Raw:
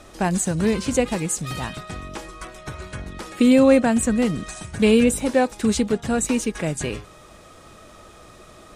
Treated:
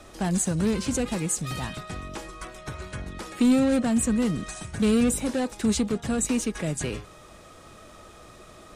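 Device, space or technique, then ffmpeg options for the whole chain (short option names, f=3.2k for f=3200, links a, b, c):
one-band saturation: -filter_complex "[0:a]acrossover=split=280|4000[a][b][c];[b]asoftclip=type=tanh:threshold=-25.5dB[d];[a][d][c]amix=inputs=3:normalize=0,volume=-2dB"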